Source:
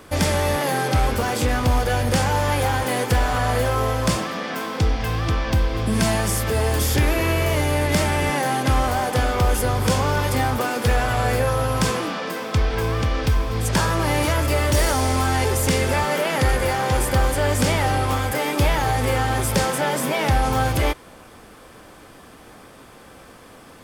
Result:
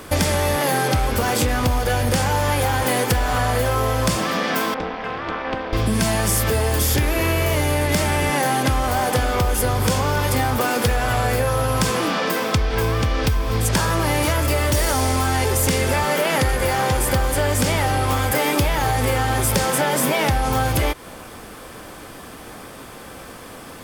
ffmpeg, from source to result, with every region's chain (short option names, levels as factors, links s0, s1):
-filter_complex "[0:a]asettb=1/sr,asplit=3[s0][s1][s2];[s0]atrim=end=4.744[s3];[s1]atrim=start=4.74:end=5.73,asetpts=PTS-STARTPTS,afade=t=in:d=0.004:c=qsin,afade=t=out:st=0.986:d=0.004:c=qsin,highpass=340,lowpass=2200,tremolo=f=260:d=0.947[s4];[s2]atrim=start=5.726[s5];[s3][s4]acrossfade=d=0.004:c1=hsin:c2=qsin[s6];[s6][s5]acrossfade=d=0.004:c1=qsin:c2=hsin,acompressor=threshold=0.0708:ratio=6,lowpass=f=2400:p=1,aemphasis=mode=production:type=75fm,volume=2.37"